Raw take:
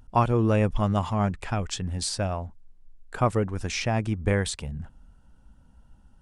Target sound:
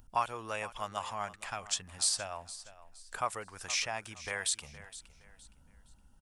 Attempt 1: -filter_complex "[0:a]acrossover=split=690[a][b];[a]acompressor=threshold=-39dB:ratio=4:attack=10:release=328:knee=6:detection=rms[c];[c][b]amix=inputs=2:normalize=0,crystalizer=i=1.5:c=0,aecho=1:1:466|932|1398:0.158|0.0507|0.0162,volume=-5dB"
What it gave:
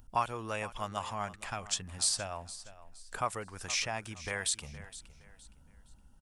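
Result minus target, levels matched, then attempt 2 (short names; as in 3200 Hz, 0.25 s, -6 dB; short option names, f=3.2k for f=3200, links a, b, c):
compressor: peak gain reduction -7 dB
-filter_complex "[0:a]acrossover=split=690[a][b];[a]acompressor=threshold=-48dB:ratio=4:attack=10:release=328:knee=6:detection=rms[c];[c][b]amix=inputs=2:normalize=0,crystalizer=i=1.5:c=0,aecho=1:1:466|932|1398:0.158|0.0507|0.0162,volume=-5dB"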